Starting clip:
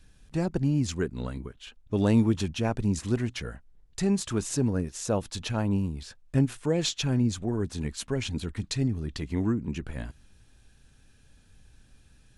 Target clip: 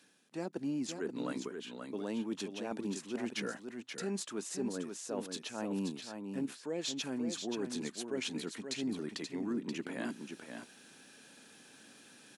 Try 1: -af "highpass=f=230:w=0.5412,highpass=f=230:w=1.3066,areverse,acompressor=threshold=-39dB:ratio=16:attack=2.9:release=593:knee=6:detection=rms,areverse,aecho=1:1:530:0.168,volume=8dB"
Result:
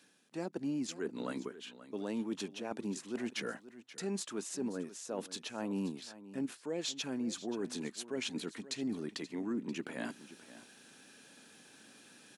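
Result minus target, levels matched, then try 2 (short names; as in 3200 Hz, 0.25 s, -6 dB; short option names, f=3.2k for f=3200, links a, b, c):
echo-to-direct -9 dB
-af "highpass=f=230:w=0.5412,highpass=f=230:w=1.3066,areverse,acompressor=threshold=-39dB:ratio=16:attack=2.9:release=593:knee=6:detection=rms,areverse,aecho=1:1:530:0.473,volume=8dB"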